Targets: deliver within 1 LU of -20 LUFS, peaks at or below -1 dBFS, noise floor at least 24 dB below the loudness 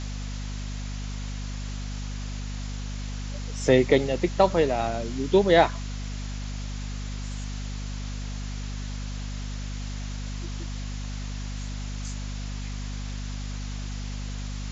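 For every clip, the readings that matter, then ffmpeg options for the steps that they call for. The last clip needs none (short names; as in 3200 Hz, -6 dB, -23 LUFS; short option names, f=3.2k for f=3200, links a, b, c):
hum 50 Hz; harmonics up to 250 Hz; hum level -30 dBFS; noise floor -33 dBFS; noise floor target -53 dBFS; loudness -29.0 LUFS; peak -5.0 dBFS; loudness target -20.0 LUFS
-> -af "bandreject=f=50:t=h:w=4,bandreject=f=100:t=h:w=4,bandreject=f=150:t=h:w=4,bandreject=f=200:t=h:w=4,bandreject=f=250:t=h:w=4"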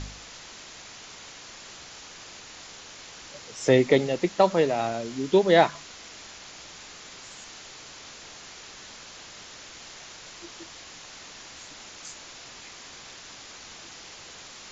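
hum none; noise floor -45 dBFS; noise floor target -47 dBFS
-> -af "afftdn=nr=6:nf=-45"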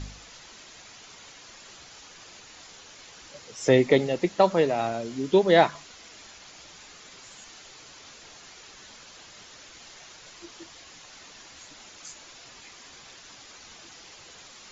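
noise floor -49 dBFS; loudness -22.5 LUFS; peak -5.0 dBFS; loudness target -20.0 LUFS
-> -af "volume=2.5dB"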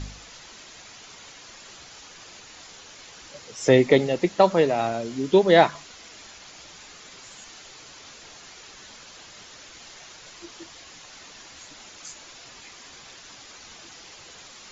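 loudness -20.0 LUFS; peak -2.5 dBFS; noise floor -46 dBFS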